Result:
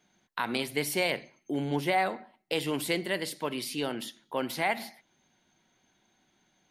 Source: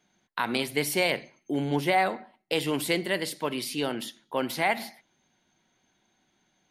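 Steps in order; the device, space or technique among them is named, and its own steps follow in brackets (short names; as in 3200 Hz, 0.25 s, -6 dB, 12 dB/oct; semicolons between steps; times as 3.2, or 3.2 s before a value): parallel compression (in parallel at -4 dB: compressor, threshold -45 dBFS, peak gain reduction 24 dB); on the sum: gain -3.5 dB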